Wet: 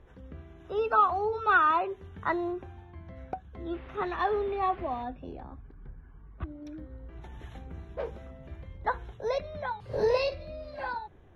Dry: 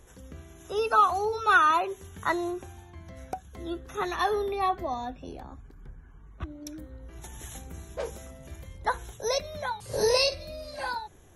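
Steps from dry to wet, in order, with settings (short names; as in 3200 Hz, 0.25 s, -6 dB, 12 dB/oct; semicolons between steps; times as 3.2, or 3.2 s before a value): 3.73–5.02 band noise 280–3100 Hz -51 dBFS; air absorption 370 m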